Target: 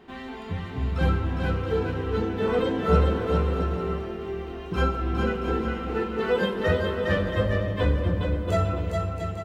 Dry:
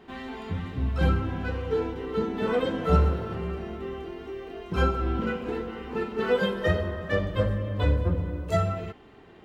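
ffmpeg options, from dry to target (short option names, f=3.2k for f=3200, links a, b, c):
-af "aecho=1:1:410|676.5|849.7|962.3|1036:0.631|0.398|0.251|0.158|0.1"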